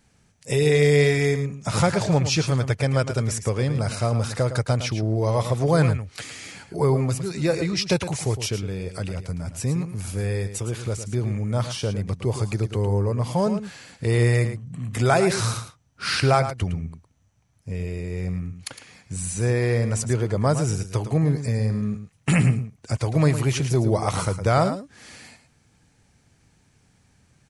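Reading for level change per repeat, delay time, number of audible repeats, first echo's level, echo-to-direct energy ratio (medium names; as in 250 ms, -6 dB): no regular repeats, 110 ms, 1, -10.5 dB, -10.5 dB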